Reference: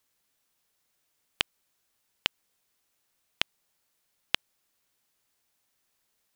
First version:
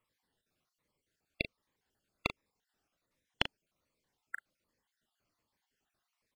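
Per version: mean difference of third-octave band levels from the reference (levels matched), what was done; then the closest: 12.5 dB: random spectral dropouts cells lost 45%; LPF 1400 Hz 6 dB/oct; doubler 39 ms -10.5 dB; cascading phaser falling 1.3 Hz; gain +4.5 dB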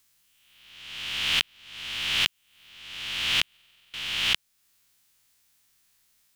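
7.0 dB: spectral swells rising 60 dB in 1.17 s; in parallel at +2 dB: compressor, threshold -38 dBFS, peak gain reduction 18 dB; on the sum: bell 520 Hz -11 dB 2.3 oct; stuck buffer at 3.52, samples 2048, times 8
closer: second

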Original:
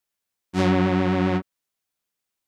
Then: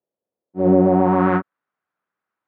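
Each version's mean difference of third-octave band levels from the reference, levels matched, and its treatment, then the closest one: 8.5 dB: low-pass sweep 530 Hz -> 1400 Hz, 0.8–1.32; HPF 140 Hz 12 dB/oct; auto swell 0.165 s; gain +4.5 dB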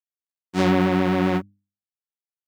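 2.0 dB: G.711 law mismatch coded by A; HPF 110 Hz; notches 50/100/150/200/250/300 Hz; gain +2 dB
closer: second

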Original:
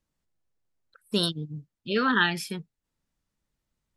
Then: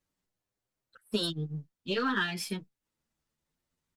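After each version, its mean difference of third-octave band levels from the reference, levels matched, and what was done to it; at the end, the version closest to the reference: 4.0 dB: half-wave gain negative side -3 dB; low shelf 67 Hz -10 dB; compressor 6:1, threshold -26 dBFS, peak gain reduction 8.5 dB; endless flanger 8.3 ms +0.51 Hz; gain +3.5 dB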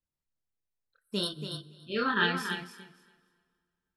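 8.0 dB: chorus voices 4, 0.66 Hz, delay 27 ms, depth 1.7 ms; thinning echo 0.283 s, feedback 19%, high-pass 160 Hz, level -5.5 dB; plate-style reverb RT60 2.1 s, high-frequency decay 0.85×, DRR 14.5 dB; upward expander 1.5:1, over -42 dBFS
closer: first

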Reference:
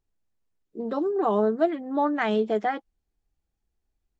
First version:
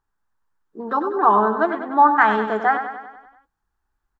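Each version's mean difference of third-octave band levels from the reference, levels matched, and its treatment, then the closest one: 5.5 dB: band shelf 1200 Hz +15 dB 1.3 oct; on a send: feedback echo 97 ms, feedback 57%, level -9 dB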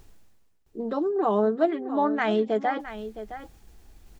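1.5 dB: reverse; upward compressor, threshold -27 dBFS; reverse; echo 0.664 s -12.5 dB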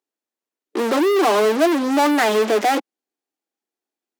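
12.5 dB: in parallel at -5.5 dB: fuzz box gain 48 dB, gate -49 dBFS; on the sum: steep high-pass 250 Hz 36 dB/oct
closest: second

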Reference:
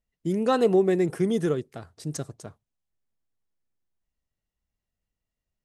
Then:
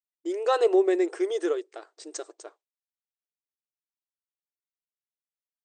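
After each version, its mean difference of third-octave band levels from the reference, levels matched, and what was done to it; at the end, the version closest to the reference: 7.0 dB: gate with hold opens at -45 dBFS; brick-wall FIR band-pass 310–9000 Hz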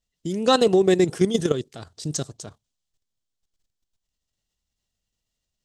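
3.5 dB: band shelf 4900 Hz +10 dB; level quantiser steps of 11 dB; gain +7 dB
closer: second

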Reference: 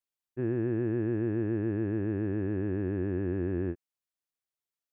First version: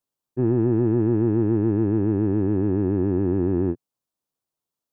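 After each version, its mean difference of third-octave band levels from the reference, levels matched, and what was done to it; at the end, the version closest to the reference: 2.5 dB: graphic EQ 125/250/500/1000/2000 Hz +7/+6/+4/+5/-8 dB; in parallel at -4 dB: soft clip -22 dBFS, distortion -11 dB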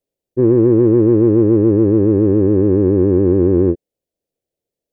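3.5 dB: resonant low shelf 770 Hz +13.5 dB, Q 3; in parallel at -7.5 dB: soft clip -13.5 dBFS, distortion -11 dB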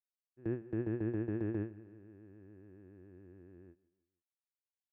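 7.5 dB: gate with hold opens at -21 dBFS; on a send: feedback echo 0.158 s, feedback 47%, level -21.5 dB; on the sum: gain -4.5 dB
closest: first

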